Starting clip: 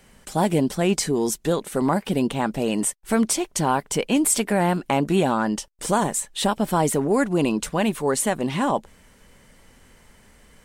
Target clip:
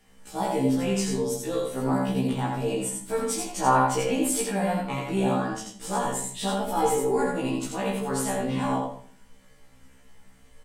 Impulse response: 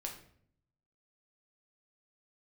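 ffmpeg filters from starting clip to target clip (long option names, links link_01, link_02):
-filter_complex "[0:a]asettb=1/sr,asplit=3[link_01][link_02][link_03];[link_01]atrim=end=3.594[link_04];[link_02]atrim=start=3.59:end=4.08,asetpts=PTS-STARTPTS,afade=type=in:duration=0.004:curve=qsin,afade=type=out:start_time=0.486:duration=0.004:curve=qsin,equalizer=frequency=1100:width_type=o:width=2.5:gain=8[link_05];[link_03]atrim=start=4.076[link_06];[link_04][link_05]acrossfade=duration=0.004:curve1=hsin:curve2=qsin[link_07];[link_07][link_06]acrossfade=duration=0.004:curve1=qsin:curve2=hsin,asettb=1/sr,asplit=3[link_08][link_09][link_10];[link_08]atrim=end=6.644[link_11];[link_09]atrim=start=6.64:end=7.14,asetpts=PTS-STARTPTS,afade=type=in:duration=0.004:curve=qsin,afade=type=out:start_time=0.496:duration=0.004:curve=qsin,aecho=1:1:2.4:0.65,atrim=end_sample=22050[link_12];[link_10]atrim=start=7.136[link_13];[link_11][link_12]acrossfade=duration=0.004:curve1=hsin:curve2=qsin[link_14];[link_14][link_13]acrossfade=duration=0.004:curve1=qsin:curve2=hsin,aecho=1:1:83|166|249:0.668|0.114|0.0193[link_15];[1:a]atrim=start_sample=2205,asetrate=61740,aresample=44100[link_16];[link_15][link_16]afir=irnorm=-1:irlink=0,afftfilt=real='re*1.73*eq(mod(b,3),0)':imag='im*1.73*eq(mod(b,3),0)':win_size=2048:overlap=0.75"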